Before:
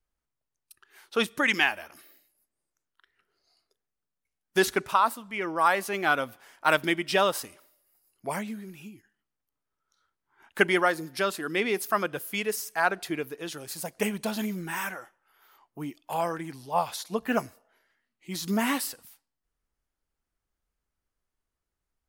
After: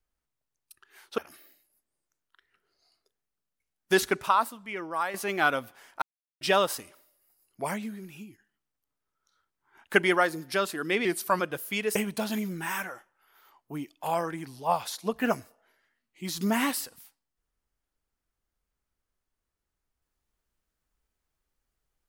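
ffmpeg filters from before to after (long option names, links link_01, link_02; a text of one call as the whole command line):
ffmpeg -i in.wav -filter_complex "[0:a]asplit=8[link_01][link_02][link_03][link_04][link_05][link_06][link_07][link_08];[link_01]atrim=end=1.182[link_09];[link_02]atrim=start=1.828:end=5.79,asetpts=PTS-STARTPTS,afade=type=out:start_time=3.032:duration=0.93:silence=0.334965[link_10];[link_03]atrim=start=5.79:end=6.67,asetpts=PTS-STARTPTS,afade=type=in:duration=0.004:curve=hsin:silence=0.334965,afade=type=out:start_time=0.876:duration=0.004:curve=hsin[link_11];[link_04]atrim=start=6.67:end=7.06,asetpts=PTS-STARTPTS,volume=0[link_12];[link_05]atrim=start=7.06:end=11.704,asetpts=PTS-STARTPTS,afade=type=in:duration=0.004:curve=hsin[link_13];[link_06]atrim=start=11.7:end=12.01,asetpts=PTS-STARTPTS,asetrate=39690,aresample=44100[link_14];[link_07]atrim=start=12.006:end=12.572[link_15];[link_08]atrim=start=14.018[link_16];[link_10][link_11][link_12][link_13]concat=n=4:v=0:a=1[link_17];[link_09][link_17]acrossfade=duration=0.004:curve1=hsin:curve2=hsin[link_18];[link_18][link_14]acrossfade=duration=0.004:curve1=hsin:curve2=hsin[link_19];[link_19][link_15]acrossfade=duration=0.004:curve1=hsin:curve2=hsin[link_20];[link_20][link_16]acrossfade=duration=0.004:curve1=hsin:curve2=hsin" out.wav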